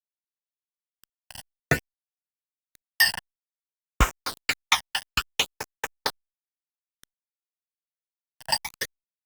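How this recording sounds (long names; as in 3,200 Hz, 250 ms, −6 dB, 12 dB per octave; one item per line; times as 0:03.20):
tremolo triangle 3 Hz, depth 85%
a quantiser's noise floor 6 bits, dither none
phaser sweep stages 12, 0.56 Hz, lowest notch 390–4,200 Hz
Opus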